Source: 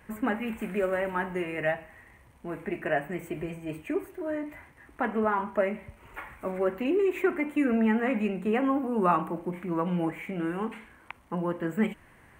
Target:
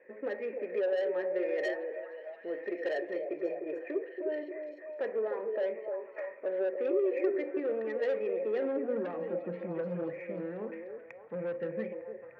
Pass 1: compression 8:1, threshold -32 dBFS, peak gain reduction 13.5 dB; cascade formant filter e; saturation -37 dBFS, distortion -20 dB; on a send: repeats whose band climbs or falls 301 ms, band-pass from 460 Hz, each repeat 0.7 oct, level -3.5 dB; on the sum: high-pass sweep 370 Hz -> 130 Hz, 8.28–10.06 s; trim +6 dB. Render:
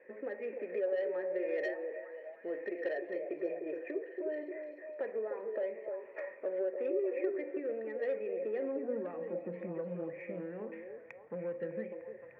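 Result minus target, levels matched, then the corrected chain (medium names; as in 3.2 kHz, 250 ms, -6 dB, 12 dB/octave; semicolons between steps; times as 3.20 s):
compression: peak gain reduction +6.5 dB
compression 8:1, threshold -24.5 dBFS, peak gain reduction 7 dB; cascade formant filter e; saturation -37 dBFS, distortion -12 dB; on a send: repeats whose band climbs or falls 301 ms, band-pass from 460 Hz, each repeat 0.7 oct, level -3.5 dB; on the sum: high-pass sweep 370 Hz -> 130 Hz, 8.28–10.06 s; trim +6 dB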